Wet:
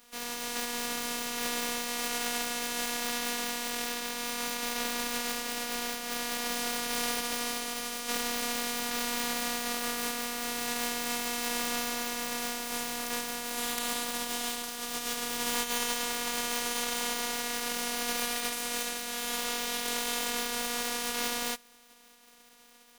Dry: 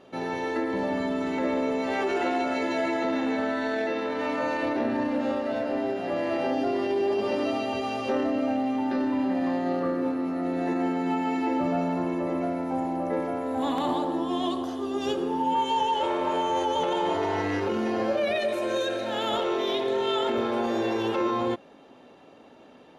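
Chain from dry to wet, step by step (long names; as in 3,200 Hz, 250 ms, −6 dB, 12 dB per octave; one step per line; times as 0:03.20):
compressing power law on the bin magnitudes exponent 0.2
phases set to zero 240 Hz
level −4 dB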